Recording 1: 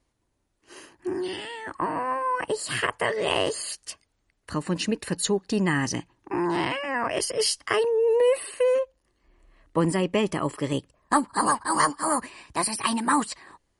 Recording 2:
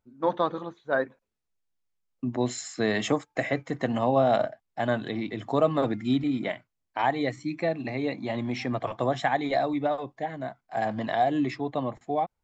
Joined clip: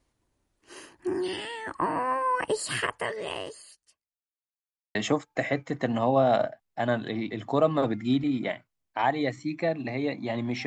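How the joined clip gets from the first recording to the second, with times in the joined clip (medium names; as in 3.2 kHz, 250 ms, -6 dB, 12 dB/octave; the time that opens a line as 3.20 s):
recording 1
2.58–4.29 s: fade out quadratic
4.29–4.95 s: mute
4.95 s: go over to recording 2 from 2.95 s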